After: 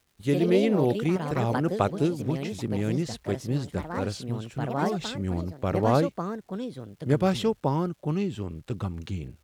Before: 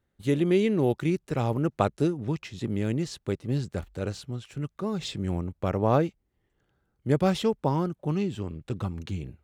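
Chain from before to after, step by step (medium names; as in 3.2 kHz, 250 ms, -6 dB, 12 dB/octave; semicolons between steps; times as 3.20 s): crackle 440 per s -54 dBFS; ever faster or slower copies 113 ms, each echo +4 st, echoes 2, each echo -6 dB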